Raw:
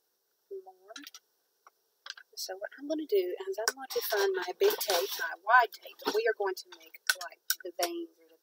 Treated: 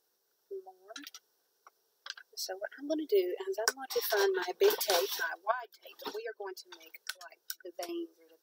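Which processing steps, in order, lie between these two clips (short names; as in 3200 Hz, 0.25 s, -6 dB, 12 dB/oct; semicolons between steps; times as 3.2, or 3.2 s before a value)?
5.51–7.89 compressor 6:1, threshold -38 dBFS, peak gain reduction 19.5 dB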